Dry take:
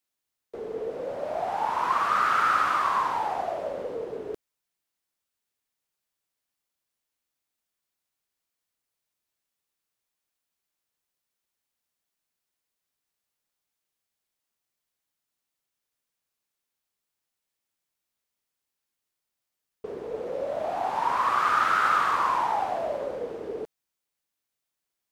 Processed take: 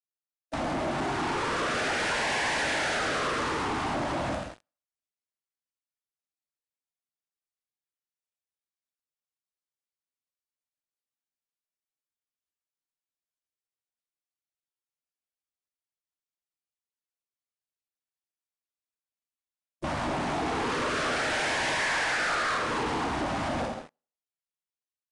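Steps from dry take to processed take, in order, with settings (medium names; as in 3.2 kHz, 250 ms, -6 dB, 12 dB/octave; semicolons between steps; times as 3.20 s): spectral gate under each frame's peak -15 dB weak; 21.79–22.57 s: peaking EQ 1.4 kHz +11.5 dB 1.7 oct; level rider gain up to 11 dB; thinning echo 86 ms, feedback 24%, high-pass 160 Hz, level -15.5 dB; compression 2.5:1, threshold -56 dBFS, peak gain reduction 28 dB; gated-style reverb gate 270 ms falling, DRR 3.5 dB; waveshaping leveller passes 5; resampled via 22.05 kHz; trim +4 dB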